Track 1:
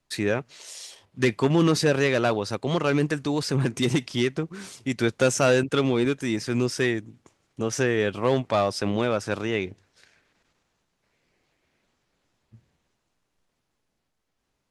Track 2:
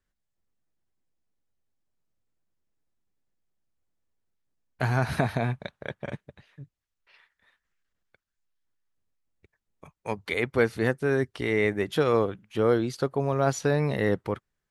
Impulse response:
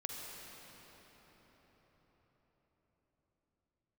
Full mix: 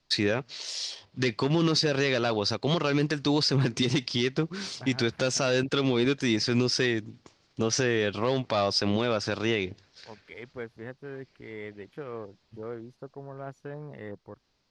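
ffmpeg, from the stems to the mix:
-filter_complex "[0:a]lowpass=f=4800:t=q:w=2.9,volume=1.26[s0];[1:a]afwtdn=0.02,volume=0.168[s1];[s0][s1]amix=inputs=2:normalize=0,alimiter=limit=0.188:level=0:latency=1:release=183"

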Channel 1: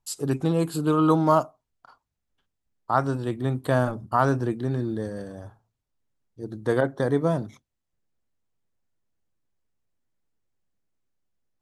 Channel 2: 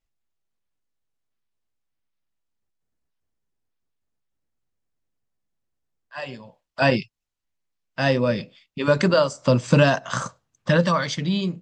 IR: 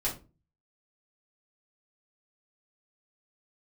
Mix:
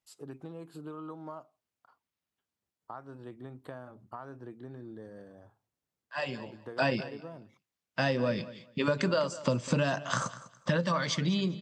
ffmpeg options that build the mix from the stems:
-filter_complex "[0:a]bass=f=250:g=-4,treble=f=4000:g=-11,acompressor=threshold=0.0398:ratio=6,volume=0.251[s0];[1:a]acompressor=threshold=0.0562:ratio=4,volume=0.891,asplit=2[s1][s2];[s2]volume=0.15,aecho=0:1:200|400|600:1|0.2|0.04[s3];[s0][s1][s3]amix=inputs=3:normalize=0,highpass=86"

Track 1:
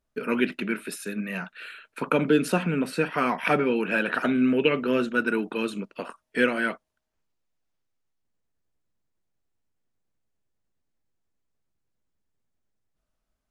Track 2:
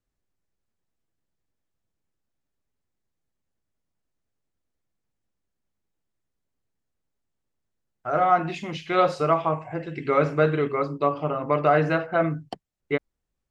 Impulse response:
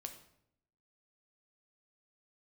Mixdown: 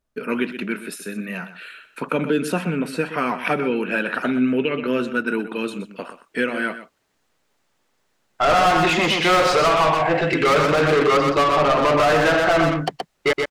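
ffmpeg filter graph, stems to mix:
-filter_complex "[0:a]volume=1.26,asplit=2[s0][s1];[s1]volume=0.224[s2];[1:a]asplit=2[s3][s4];[s4]highpass=f=720:p=1,volume=31.6,asoftclip=type=tanh:threshold=0.447[s5];[s3][s5]amix=inputs=2:normalize=0,lowpass=f=4300:p=1,volume=0.501,adelay=350,volume=0.794,asplit=3[s6][s7][s8];[s6]atrim=end=2.79,asetpts=PTS-STARTPTS,afade=t=out:st=2.786:d=0.004:c=hsin[s9];[s7]atrim=start=2.79:end=5.51,asetpts=PTS-STARTPTS,volume=0[s10];[s8]atrim=start=5.51,asetpts=PTS-STARTPTS,afade=t=in:d=0.004:c=hsin[s11];[s9][s10][s11]concat=n=3:v=0:a=1,asplit=2[s12][s13];[s13]volume=0.596[s14];[s2][s14]amix=inputs=2:normalize=0,aecho=0:1:124:1[s15];[s0][s12][s15]amix=inputs=3:normalize=0,alimiter=limit=0.316:level=0:latency=1:release=139"

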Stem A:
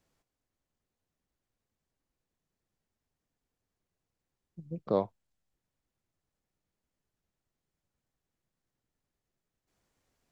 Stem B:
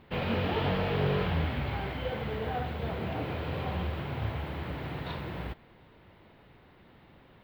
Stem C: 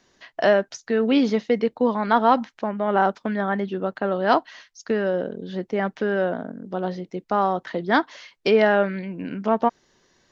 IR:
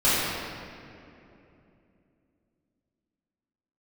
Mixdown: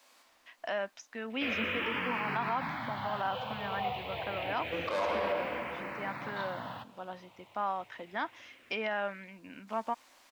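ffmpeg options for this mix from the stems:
-filter_complex "[0:a]asplit=2[s0][s1];[s1]highpass=f=720:p=1,volume=17.8,asoftclip=type=tanh:threshold=0.188[s2];[s0][s2]amix=inputs=2:normalize=0,lowpass=f=1400:p=1,volume=0.501,aexciter=amount=3.2:drive=5.4:freq=3600,highpass=f=190:w=0.5412,highpass=f=190:w=1.3066,volume=0.794,asplit=2[s3][s4];[s4]volume=0.188[s5];[1:a]highpass=f=120:w=0.5412,highpass=f=120:w=1.3066,asplit=2[s6][s7];[s7]afreqshift=-0.28[s8];[s6][s8]amix=inputs=2:normalize=1,adelay=1300,volume=1.12[s9];[2:a]bandreject=f=4400:w=5.4,adelay=250,volume=0.224[s10];[3:a]atrim=start_sample=2205[s11];[s5][s11]afir=irnorm=-1:irlink=0[s12];[s3][s9][s10][s12]amix=inputs=4:normalize=0,equalizer=f=160:t=o:w=0.67:g=-12,equalizer=f=400:t=o:w=0.67:g=-10,equalizer=f=1000:t=o:w=0.67:g=4,equalizer=f=2500:t=o:w=0.67:g=7,alimiter=limit=0.075:level=0:latency=1:release=68"

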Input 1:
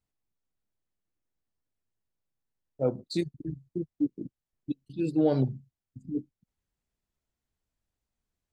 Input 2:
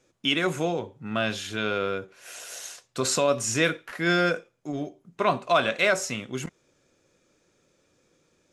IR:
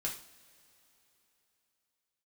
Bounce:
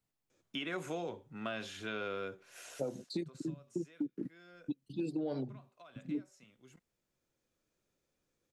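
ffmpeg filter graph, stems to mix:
-filter_complex "[0:a]lowshelf=f=100:t=q:w=1.5:g=-6.5,alimiter=limit=0.126:level=0:latency=1:release=139,acompressor=threshold=0.0282:ratio=4,volume=1.12,asplit=2[s0][s1];[1:a]acompressor=threshold=0.0631:ratio=6,adelay=300,volume=0.376,afade=t=out:st=2.82:d=0.69:silence=0.298538[s2];[s1]apad=whole_len=389277[s3];[s2][s3]sidechaincompress=threshold=0.00794:ratio=8:attack=5.2:release=1340[s4];[s0][s4]amix=inputs=2:normalize=0,acrossover=split=190|2900[s5][s6][s7];[s5]acompressor=threshold=0.00178:ratio=4[s8];[s6]acompressor=threshold=0.0224:ratio=4[s9];[s7]acompressor=threshold=0.00282:ratio=4[s10];[s8][s9][s10]amix=inputs=3:normalize=0"

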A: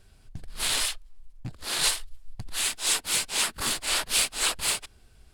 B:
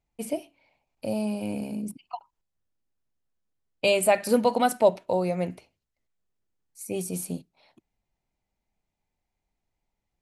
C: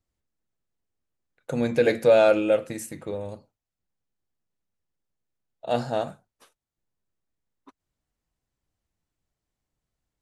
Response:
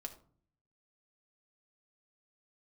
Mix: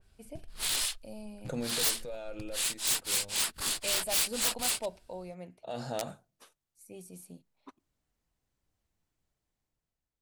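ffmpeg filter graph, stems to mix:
-filter_complex "[0:a]volume=0.398[s0];[1:a]volume=0.141[s1];[2:a]dynaudnorm=f=200:g=9:m=3.98,alimiter=limit=0.282:level=0:latency=1:release=104,volume=1.12,afade=t=out:st=1.29:d=0.65:silence=0.237137,afade=t=in:st=5.39:d=0.78:silence=0.251189,asplit=3[s2][s3][s4];[s3]volume=0.0891[s5];[s4]apad=whole_len=450617[s6];[s1][s6]sidechaincompress=threshold=0.00251:ratio=8:attack=16:release=104[s7];[3:a]atrim=start_sample=2205[s8];[s5][s8]afir=irnorm=-1:irlink=0[s9];[s0][s7][s2][s9]amix=inputs=4:normalize=0,aeval=exprs='(mod(15.8*val(0)+1,2)-1)/15.8':c=same,adynamicequalizer=threshold=0.00398:dfrequency=2700:dqfactor=0.7:tfrequency=2700:tqfactor=0.7:attack=5:release=100:ratio=0.375:range=2.5:mode=boostabove:tftype=highshelf"

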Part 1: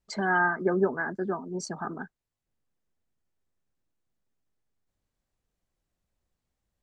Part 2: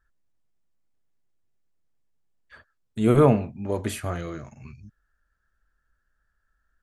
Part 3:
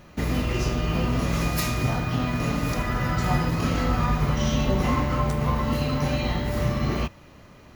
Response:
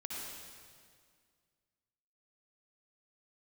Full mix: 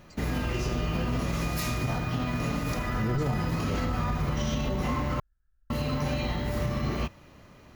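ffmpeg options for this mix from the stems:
-filter_complex "[0:a]volume=0.133[s0];[1:a]aemphasis=mode=reproduction:type=riaa,volume=0.211[s1];[2:a]volume=0.668,asplit=3[s2][s3][s4];[s2]atrim=end=5.2,asetpts=PTS-STARTPTS,afade=t=out:st=5.196:d=0.004:c=hsin[s5];[s3]atrim=start=5.2:end=5.7,asetpts=PTS-STARTPTS,volume=0[s6];[s4]atrim=start=5.7,asetpts=PTS-STARTPTS,afade=t=in:d=0.004:c=hsin[s7];[s5][s6][s7]concat=n=3:v=0:a=1[s8];[s0][s1][s8]amix=inputs=3:normalize=0,alimiter=limit=0.106:level=0:latency=1:release=45"

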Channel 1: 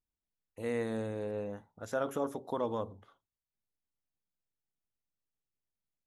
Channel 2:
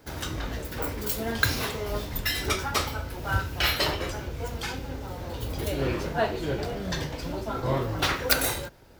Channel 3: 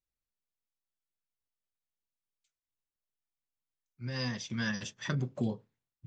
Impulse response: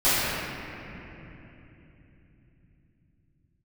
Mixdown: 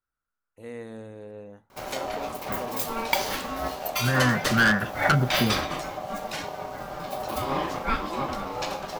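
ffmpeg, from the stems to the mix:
-filter_complex "[0:a]volume=0.596[s0];[1:a]aeval=exprs='val(0)*sin(2*PI*680*n/s)':c=same,adelay=1700,volume=1.33[s1];[2:a]dynaudnorm=f=110:g=17:m=3.35,lowpass=f=1400:t=q:w=9.2,volume=7.08,asoftclip=hard,volume=0.141,volume=1.19[s2];[s0][s1][s2]amix=inputs=3:normalize=0"

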